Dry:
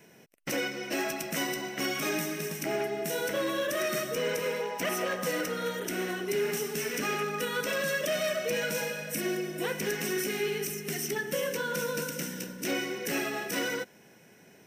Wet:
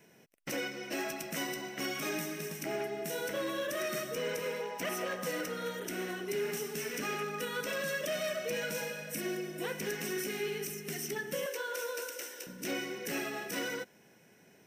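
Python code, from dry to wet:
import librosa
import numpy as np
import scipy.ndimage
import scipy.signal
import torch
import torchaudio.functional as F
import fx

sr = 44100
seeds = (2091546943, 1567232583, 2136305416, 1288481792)

y = fx.steep_highpass(x, sr, hz=370.0, slope=36, at=(11.46, 12.47))
y = y * 10.0 ** (-5.0 / 20.0)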